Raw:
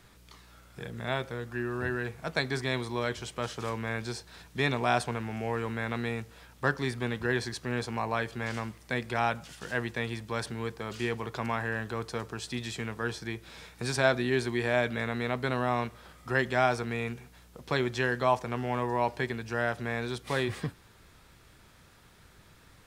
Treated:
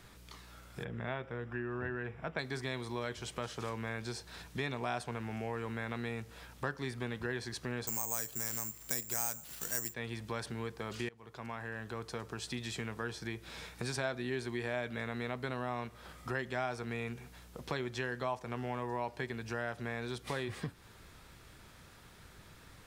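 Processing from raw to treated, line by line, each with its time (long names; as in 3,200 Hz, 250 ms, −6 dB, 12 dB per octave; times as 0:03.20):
0:00.84–0:02.39: Savitzky-Golay smoothing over 25 samples
0:07.87–0:09.94: bad sample-rate conversion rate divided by 6×, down none, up zero stuff
0:11.09–0:12.75: fade in, from −23.5 dB
whole clip: downward compressor 2.5 to 1, threshold −39 dBFS; level +1 dB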